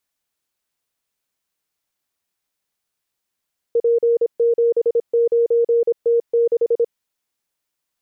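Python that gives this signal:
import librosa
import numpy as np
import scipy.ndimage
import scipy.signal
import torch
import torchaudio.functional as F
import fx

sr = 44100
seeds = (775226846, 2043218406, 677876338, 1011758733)

y = fx.morse(sr, text='P79T6', wpm=26, hz=468.0, level_db=-12.5)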